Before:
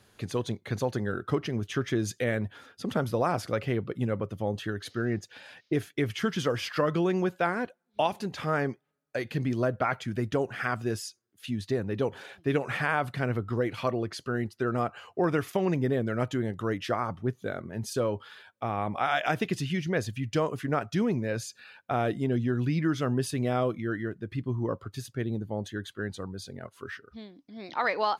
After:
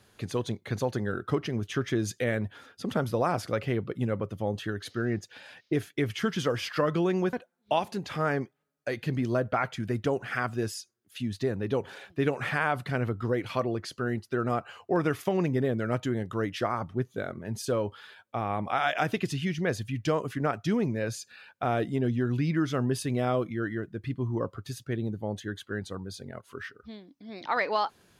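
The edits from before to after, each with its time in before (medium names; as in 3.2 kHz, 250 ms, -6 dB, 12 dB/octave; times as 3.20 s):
7.33–7.61 s: delete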